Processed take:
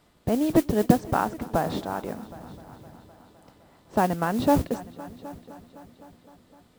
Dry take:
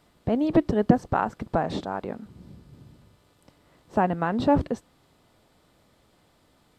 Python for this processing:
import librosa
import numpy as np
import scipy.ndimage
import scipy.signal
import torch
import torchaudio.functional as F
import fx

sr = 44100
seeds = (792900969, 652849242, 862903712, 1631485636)

y = fx.mod_noise(x, sr, seeds[0], snr_db=20)
y = fx.echo_heads(y, sr, ms=256, heads='all three', feedback_pct=50, wet_db=-23.0)